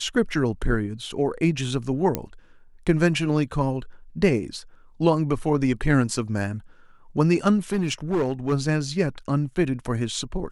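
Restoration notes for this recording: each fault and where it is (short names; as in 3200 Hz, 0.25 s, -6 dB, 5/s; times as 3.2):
2.15 pop -9 dBFS
7.72–8.53 clipped -18.5 dBFS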